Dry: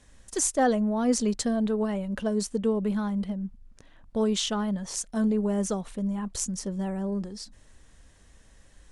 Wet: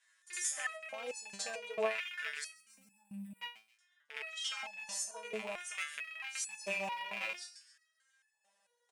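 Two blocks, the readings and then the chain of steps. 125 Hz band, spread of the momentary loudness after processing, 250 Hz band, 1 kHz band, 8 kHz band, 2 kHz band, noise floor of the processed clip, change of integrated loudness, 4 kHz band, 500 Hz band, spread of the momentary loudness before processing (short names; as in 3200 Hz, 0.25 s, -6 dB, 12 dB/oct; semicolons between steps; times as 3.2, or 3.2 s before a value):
under -25 dB, 13 LU, -28.5 dB, -11.0 dB, -8.5 dB, +2.5 dB, -79 dBFS, -11.5 dB, -6.0 dB, -13.5 dB, 9 LU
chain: rattling part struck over -40 dBFS, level -19 dBFS; gate -43 dBFS, range -16 dB; bell 310 Hz -10 dB 0.57 oct; comb 6.2 ms, depth 58%; pre-echo 65 ms -16 dB; compressor 3:1, threshold -39 dBFS, peak gain reduction 15.5 dB; spectral gain 2.54–3.41, 230–7600 Hz -29 dB; on a send: thin delay 0.134 s, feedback 41%, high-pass 4900 Hz, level -13 dB; on the sum: LFO high-pass square 0.54 Hz 610–1600 Hz; stepped resonator 4.5 Hz 110–860 Hz; gain +14 dB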